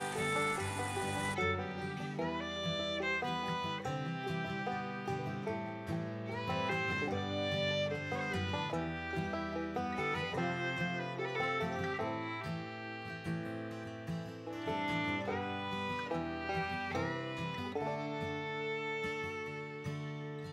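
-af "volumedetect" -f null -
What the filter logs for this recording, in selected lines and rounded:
mean_volume: -37.6 dB
max_volume: -22.1 dB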